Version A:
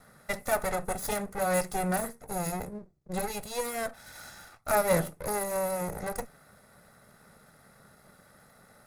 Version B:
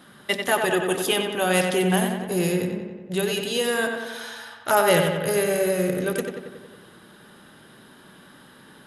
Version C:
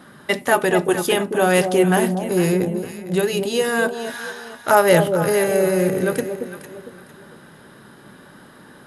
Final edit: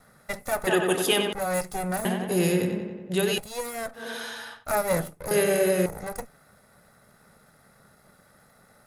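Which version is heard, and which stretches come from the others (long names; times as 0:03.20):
A
0:00.67–0:01.33: punch in from B
0:02.05–0:03.38: punch in from B
0:04.02–0:04.59: punch in from B, crossfade 0.16 s
0:05.31–0:05.86: punch in from B
not used: C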